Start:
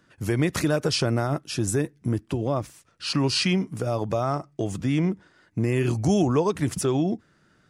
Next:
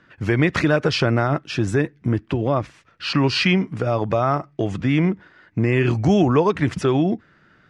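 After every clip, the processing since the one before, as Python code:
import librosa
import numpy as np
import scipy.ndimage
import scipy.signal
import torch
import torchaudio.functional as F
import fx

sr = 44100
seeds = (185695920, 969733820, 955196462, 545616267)

y = scipy.signal.sosfilt(scipy.signal.butter(2, 3700.0, 'lowpass', fs=sr, output='sos'), x)
y = fx.peak_eq(y, sr, hz=1900.0, db=5.5, octaves=1.5)
y = y * 10.0 ** (4.5 / 20.0)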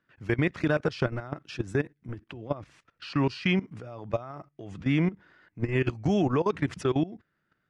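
y = fx.level_steps(x, sr, step_db=18)
y = y * 10.0 ** (-5.0 / 20.0)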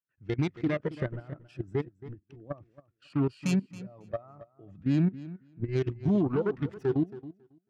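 y = fx.self_delay(x, sr, depth_ms=0.38)
y = fx.echo_feedback(y, sr, ms=274, feedback_pct=26, wet_db=-11)
y = fx.spectral_expand(y, sr, expansion=1.5)
y = y * 10.0 ** (-4.0 / 20.0)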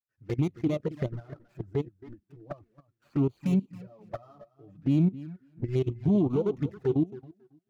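y = scipy.signal.medfilt(x, 15)
y = fx.env_flanger(y, sr, rest_ms=9.3, full_db=-26.5)
y = y * 10.0 ** (2.0 / 20.0)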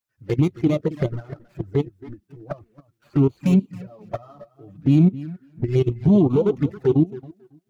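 y = fx.spec_quant(x, sr, step_db=15)
y = y * 10.0 ** (8.5 / 20.0)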